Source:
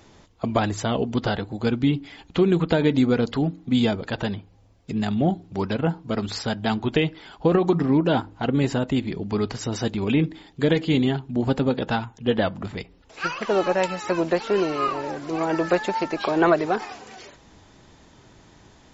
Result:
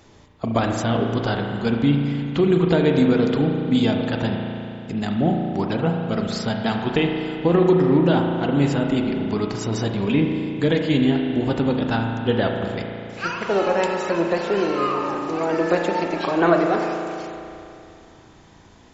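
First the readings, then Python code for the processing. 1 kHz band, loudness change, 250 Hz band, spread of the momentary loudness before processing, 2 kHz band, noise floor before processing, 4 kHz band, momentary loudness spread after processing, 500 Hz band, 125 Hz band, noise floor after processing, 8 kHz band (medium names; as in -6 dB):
+2.0 dB, +2.5 dB, +3.0 dB, 9 LU, +2.0 dB, -53 dBFS, +1.0 dB, 10 LU, +2.5 dB, +3.0 dB, -48 dBFS, no reading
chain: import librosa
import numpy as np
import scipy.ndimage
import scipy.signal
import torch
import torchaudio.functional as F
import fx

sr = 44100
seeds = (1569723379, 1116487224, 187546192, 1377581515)

y = fx.rev_spring(x, sr, rt60_s=2.8, pass_ms=(35,), chirp_ms=50, drr_db=2.0)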